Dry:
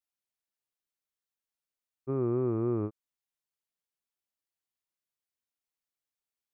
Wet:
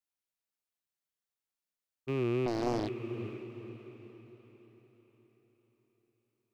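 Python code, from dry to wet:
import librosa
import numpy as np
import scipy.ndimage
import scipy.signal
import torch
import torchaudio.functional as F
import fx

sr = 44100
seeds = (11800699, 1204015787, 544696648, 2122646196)

y = fx.rattle_buzz(x, sr, strikes_db=-46.0, level_db=-32.0)
y = fx.echo_diffused(y, sr, ms=479, feedback_pct=46, wet_db=-8.5)
y = fx.doppler_dist(y, sr, depth_ms=0.98, at=(2.46, 2.88))
y = y * librosa.db_to_amplitude(-2.0)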